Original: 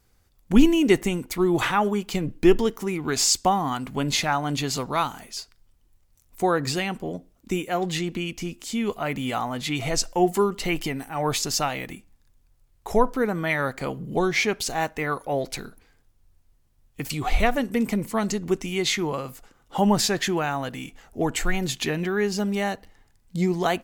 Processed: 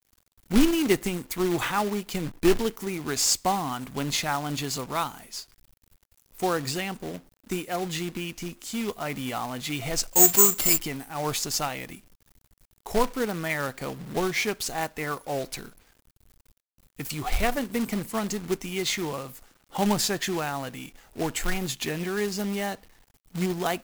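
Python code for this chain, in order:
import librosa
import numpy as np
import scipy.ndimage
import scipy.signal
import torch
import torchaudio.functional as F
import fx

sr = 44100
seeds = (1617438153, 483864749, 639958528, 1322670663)

y = fx.high_shelf(x, sr, hz=10000.0, db=7.5)
y = fx.quant_companded(y, sr, bits=4)
y = fx.resample_bad(y, sr, factor=6, down='none', up='zero_stuff', at=(10.13, 10.78))
y = y * 10.0 ** (-4.5 / 20.0)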